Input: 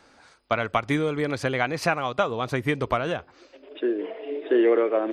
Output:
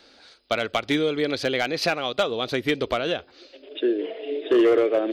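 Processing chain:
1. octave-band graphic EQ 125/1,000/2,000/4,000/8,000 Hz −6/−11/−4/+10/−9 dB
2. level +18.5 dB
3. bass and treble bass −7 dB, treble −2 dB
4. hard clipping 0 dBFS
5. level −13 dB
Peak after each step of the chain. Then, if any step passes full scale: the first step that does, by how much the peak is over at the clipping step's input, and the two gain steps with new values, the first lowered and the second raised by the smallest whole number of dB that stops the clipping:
−12.0, +6.5, +6.5, 0.0, −13.0 dBFS
step 2, 6.5 dB
step 2 +11.5 dB, step 5 −6 dB

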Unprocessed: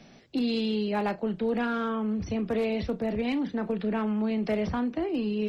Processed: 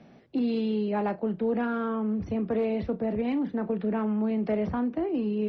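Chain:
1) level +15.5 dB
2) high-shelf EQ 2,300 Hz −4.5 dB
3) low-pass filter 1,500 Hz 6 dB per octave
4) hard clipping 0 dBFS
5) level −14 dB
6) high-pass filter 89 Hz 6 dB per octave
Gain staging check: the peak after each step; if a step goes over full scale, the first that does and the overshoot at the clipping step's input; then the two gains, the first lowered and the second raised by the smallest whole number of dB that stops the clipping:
−3.5, −3.5, −4.5, −4.5, −18.5, −18.5 dBFS
no step passes full scale

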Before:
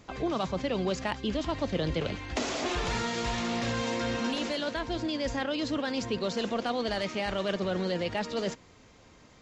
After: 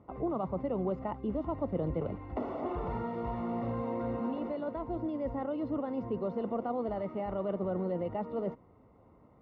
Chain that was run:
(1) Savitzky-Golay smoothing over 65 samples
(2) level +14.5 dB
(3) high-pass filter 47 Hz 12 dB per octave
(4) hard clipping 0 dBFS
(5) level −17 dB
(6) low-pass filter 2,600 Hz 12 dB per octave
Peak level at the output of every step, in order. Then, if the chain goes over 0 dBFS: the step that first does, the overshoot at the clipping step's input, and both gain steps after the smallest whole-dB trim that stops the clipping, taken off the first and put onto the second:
−19.5, −5.0, −5.0, −5.0, −22.0, −22.0 dBFS
no step passes full scale

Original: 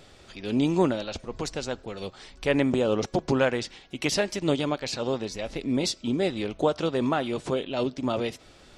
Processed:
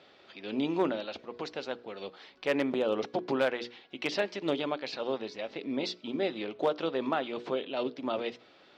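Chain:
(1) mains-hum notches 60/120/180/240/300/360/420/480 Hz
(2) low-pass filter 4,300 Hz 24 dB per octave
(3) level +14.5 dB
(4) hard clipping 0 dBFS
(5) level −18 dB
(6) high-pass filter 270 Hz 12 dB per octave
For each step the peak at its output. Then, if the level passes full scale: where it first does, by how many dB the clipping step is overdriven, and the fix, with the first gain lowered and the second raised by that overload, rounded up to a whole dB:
−9.0, −9.0, +5.5, 0.0, −18.0, −15.0 dBFS
step 3, 5.5 dB
step 3 +8.5 dB, step 5 −12 dB

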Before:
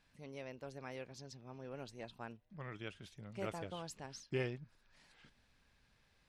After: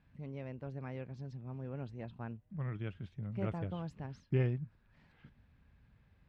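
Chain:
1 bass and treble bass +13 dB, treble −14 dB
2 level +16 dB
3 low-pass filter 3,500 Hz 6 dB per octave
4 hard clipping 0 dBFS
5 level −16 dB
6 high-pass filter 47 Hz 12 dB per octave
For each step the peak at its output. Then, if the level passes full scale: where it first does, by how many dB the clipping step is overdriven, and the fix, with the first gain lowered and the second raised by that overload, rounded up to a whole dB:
−19.5, −3.5, −3.5, −3.5, −19.5, −21.5 dBFS
no step passes full scale

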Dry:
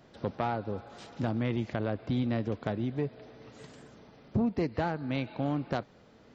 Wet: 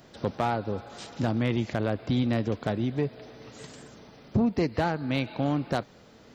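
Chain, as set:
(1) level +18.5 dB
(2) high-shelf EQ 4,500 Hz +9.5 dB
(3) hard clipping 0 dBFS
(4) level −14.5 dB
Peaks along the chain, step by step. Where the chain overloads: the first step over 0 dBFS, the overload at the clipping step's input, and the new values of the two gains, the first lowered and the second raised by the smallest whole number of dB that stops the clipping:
+3.5, +4.5, 0.0, −14.5 dBFS
step 1, 4.5 dB
step 1 +13.5 dB, step 4 −9.5 dB

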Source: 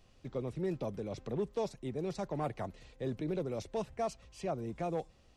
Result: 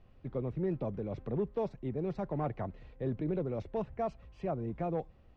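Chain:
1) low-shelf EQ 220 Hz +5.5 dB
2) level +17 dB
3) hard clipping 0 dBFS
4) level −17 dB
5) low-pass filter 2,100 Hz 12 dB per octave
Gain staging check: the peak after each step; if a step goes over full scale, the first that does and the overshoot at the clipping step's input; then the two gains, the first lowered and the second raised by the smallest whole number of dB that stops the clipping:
−23.0, −6.0, −6.0, −23.0, −23.5 dBFS
no step passes full scale

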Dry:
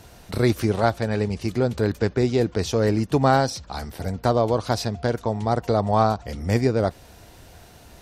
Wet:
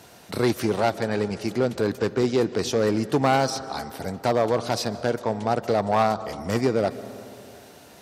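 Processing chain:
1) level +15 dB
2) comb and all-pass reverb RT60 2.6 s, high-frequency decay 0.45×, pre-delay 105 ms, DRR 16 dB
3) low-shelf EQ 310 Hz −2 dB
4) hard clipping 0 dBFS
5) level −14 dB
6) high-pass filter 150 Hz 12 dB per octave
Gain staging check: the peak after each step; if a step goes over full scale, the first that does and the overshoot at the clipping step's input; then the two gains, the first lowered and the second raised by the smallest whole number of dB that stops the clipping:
+10.0, +10.5, +10.0, 0.0, −14.0, −8.5 dBFS
step 1, 10.0 dB
step 1 +5 dB, step 5 −4 dB

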